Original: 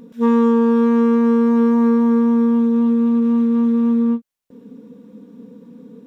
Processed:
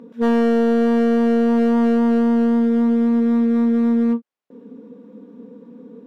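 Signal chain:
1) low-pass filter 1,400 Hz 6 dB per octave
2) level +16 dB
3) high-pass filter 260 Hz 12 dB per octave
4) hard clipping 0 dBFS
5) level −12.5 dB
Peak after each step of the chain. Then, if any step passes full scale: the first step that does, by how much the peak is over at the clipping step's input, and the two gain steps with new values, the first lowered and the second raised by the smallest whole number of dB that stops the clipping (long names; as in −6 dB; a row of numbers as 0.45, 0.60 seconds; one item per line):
−8.0, +8.0, +7.5, 0.0, −12.5 dBFS
step 2, 7.5 dB
step 2 +8 dB, step 5 −4.5 dB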